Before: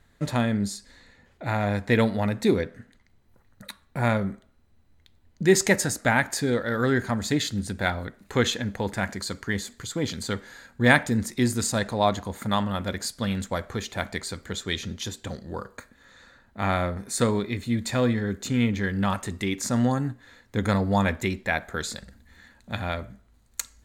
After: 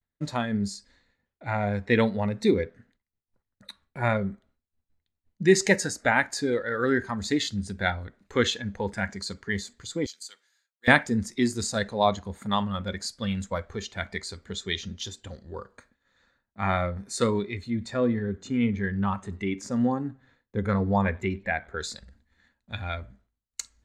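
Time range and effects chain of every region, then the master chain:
0:10.06–0:10.88: high-pass filter 260 Hz + first difference
0:17.70–0:21.82: high-shelf EQ 3,000 Hz −9 dB + feedback echo with a swinging delay time 95 ms, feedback 35%, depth 98 cents, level −21 dB
whole clip: noise reduction from a noise print of the clip's start 9 dB; downward expander −56 dBFS; low-pass filter 6,700 Hz 12 dB per octave

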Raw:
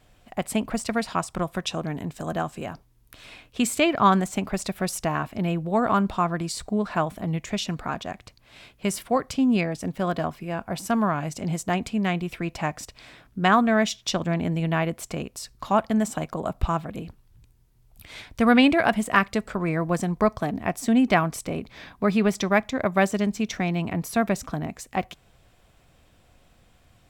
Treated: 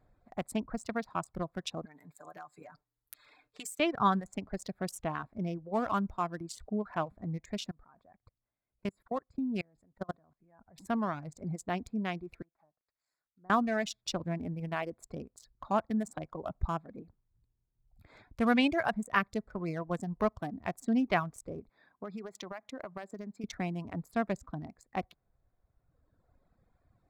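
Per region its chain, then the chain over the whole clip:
0:01.85–0:03.80: spectral tilt +4 dB per octave + comb filter 6.7 ms, depth 89% + downward compressor 2.5 to 1, threshold −36 dBFS
0:07.71–0:10.78: low-shelf EQ 94 Hz +3 dB + output level in coarse steps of 23 dB
0:12.42–0:13.50: gap after every zero crossing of 0.13 ms + treble cut that deepens with the level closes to 510 Hz, closed at −25 dBFS + first-order pre-emphasis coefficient 0.97
0:21.69–0:23.44: high-pass filter 370 Hz 6 dB per octave + downward compressor 10 to 1, threshold −27 dBFS
whole clip: adaptive Wiener filter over 15 samples; reverb reduction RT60 1.7 s; level −8 dB

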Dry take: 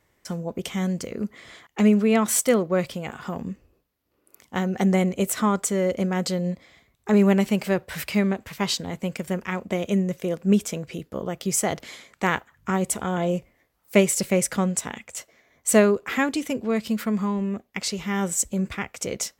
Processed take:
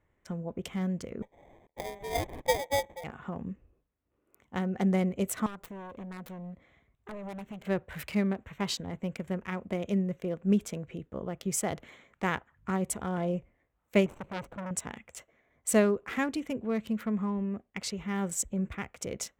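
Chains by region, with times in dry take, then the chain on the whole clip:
0:01.22–0:03.04: elliptic high-pass filter 520 Hz + spectral tilt −4.5 dB per octave + sample-rate reduction 1,400 Hz
0:05.46–0:07.65: phase distortion by the signal itself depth 0.96 ms + downward compressor 4 to 1, threshold −34 dBFS
0:14.06–0:14.71: running median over 25 samples + saturating transformer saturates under 1,900 Hz
whole clip: adaptive Wiener filter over 9 samples; low-shelf EQ 98 Hz +8 dB; level −7.5 dB

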